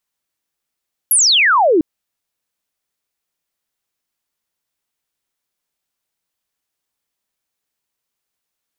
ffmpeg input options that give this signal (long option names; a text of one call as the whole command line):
ffmpeg -f lavfi -i "aevalsrc='0.355*clip(t/0.002,0,1)*clip((0.7-t)/0.002,0,1)*sin(2*PI*12000*0.7/log(290/12000)*(exp(log(290/12000)*t/0.7)-1))':duration=0.7:sample_rate=44100" out.wav